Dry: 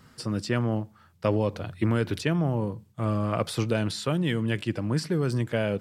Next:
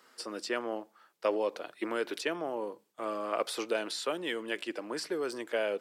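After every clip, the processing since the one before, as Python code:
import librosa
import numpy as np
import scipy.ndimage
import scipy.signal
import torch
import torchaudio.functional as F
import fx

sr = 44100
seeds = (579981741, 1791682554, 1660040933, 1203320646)

y = scipy.signal.sosfilt(scipy.signal.butter(4, 350.0, 'highpass', fs=sr, output='sos'), x)
y = y * librosa.db_to_amplitude(-2.5)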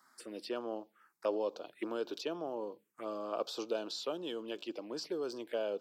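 y = fx.env_phaser(x, sr, low_hz=450.0, high_hz=2000.0, full_db=-32.5)
y = y * librosa.db_to_amplitude(-3.0)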